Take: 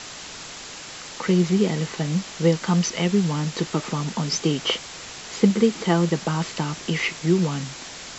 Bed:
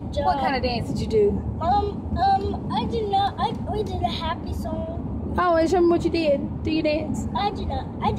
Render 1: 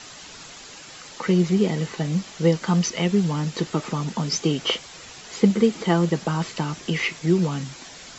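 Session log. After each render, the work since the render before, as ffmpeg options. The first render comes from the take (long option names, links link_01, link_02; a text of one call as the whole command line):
ffmpeg -i in.wav -af "afftdn=noise_reduction=7:noise_floor=-38" out.wav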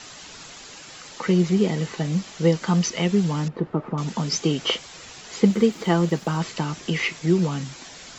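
ffmpeg -i in.wav -filter_complex "[0:a]asettb=1/sr,asplit=3[link_01][link_02][link_03];[link_01]atrim=end=3.484[link_04];[link_02]atrim=start=3.48:end=3.98,asetpts=PTS-STARTPTS,afade=type=in:duration=0.004:curve=qsin,afade=type=out:start_time=0.496:duration=0.004:curve=qsin,lowpass=1100[link_05];[link_03]atrim=start=3.976[link_06];[link_04][link_05]acrossfade=duration=0.004:curve1=hsin:curve2=qsin[link_07];[link_07][link_06]acrossfade=duration=0.004:curve1=qsin:curve2=hsin,asettb=1/sr,asplit=3[link_08][link_09][link_10];[link_08]atrim=end=5.454[link_11];[link_09]atrim=start=5.45:end=6.37,asetpts=PTS-STARTPTS,afade=type=in:duration=0.004:curve=qsin,afade=type=out:start_time=0.916:duration=0.004:curve=qsin,aeval=exprs='sgn(val(0))*max(abs(val(0))-0.00376,0)':channel_layout=same[link_12];[link_10]atrim=start=6.366[link_13];[link_11][link_12]acrossfade=duration=0.004:curve1=hsin:curve2=qsin[link_14];[link_14][link_13]acrossfade=duration=0.004:curve1=qsin:curve2=hsin" out.wav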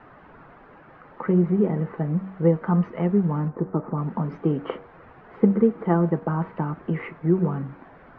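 ffmpeg -i in.wav -af "lowpass=frequency=1500:width=0.5412,lowpass=frequency=1500:width=1.3066,bandreject=frequency=95.19:width_type=h:width=4,bandreject=frequency=190.38:width_type=h:width=4,bandreject=frequency=285.57:width_type=h:width=4,bandreject=frequency=380.76:width_type=h:width=4,bandreject=frequency=475.95:width_type=h:width=4,bandreject=frequency=571.14:width_type=h:width=4,bandreject=frequency=666.33:width_type=h:width=4,bandreject=frequency=761.52:width_type=h:width=4,bandreject=frequency=856.71:width_type=h:width=4,bandreject=frequency=951.9:width_type=h:width=4,bandreject=frequency=1047.09:width_type=h:width=4,bandreject=frequency=1142.28:width_type=h:width=4,bandreject=frequency=1237.47:width_type=h:width=4,bandreject=frequency=1332.66:width_type=h:width=4,bandreject=frequency=1427.85:width_type=h:width=4,bandreject=frequency=1523.04:width_type=h:width=4" out.wav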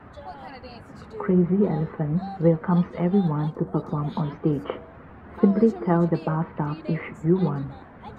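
ffmpeg -i in.wav -i bed.wav -filter_complex "[1:a]volume=-18dB[link_01];[0:a][link_01]amix=inputs=2:normalize=0" out.wav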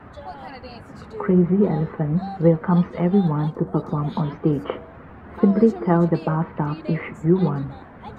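ffmpeg -i in.wav -af "volume=3dB,alimiter=limit=-3dB:level=0:latency=1" out.wav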